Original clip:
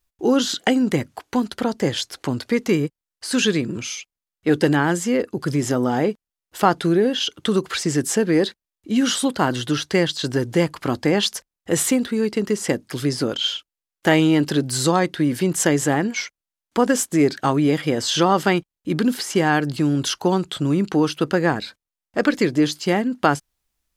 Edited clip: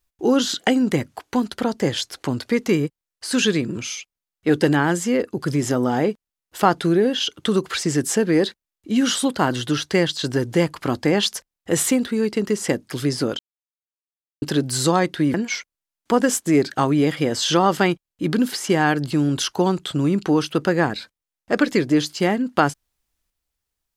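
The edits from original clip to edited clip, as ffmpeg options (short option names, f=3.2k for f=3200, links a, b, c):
-filter_complex "[0:a]asplit=4[a][b][c][d];[a]atrim=end=13.39,asetpts=PTS-STARTPTS,afade=t=out:st=13.386:d=0.004:c=hsin[e];[b]atrim=start=13.39:end=14.42,asetpts=PTS-STARTPTS,volume=0[f];[c]atrim=start=14.42:end=15.342,asetpts=PTS-STARTPTS,afade=t=in:d=0.004:c=hsin[g];[d]atrim=start=15.998[h];[e][f][g]concat=n=3:v=0:a=1[i];[i][h]acrossfade=d=0.004:c1=hsin:c2=hsin"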